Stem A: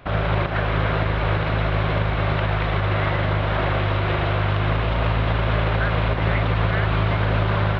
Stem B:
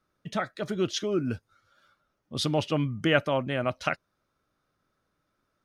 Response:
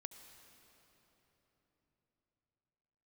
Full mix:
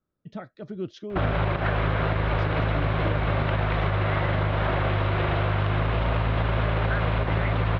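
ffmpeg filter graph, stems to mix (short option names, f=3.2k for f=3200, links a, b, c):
-filter_complex "[0:a]highshelf=f=3.9k:g=-6,adelay=1100,volume=1.5dB[a];[1:a]lowpass=f=5.3k:w=0.5412,lowpass=f=5.3k:w=1.3066,tiltshelf=f=780:g=7,volume=-9.5dB[b];[a][b]amix=inputs=2:normalize=0,acompressor=threshold=-20dB:ratio=6"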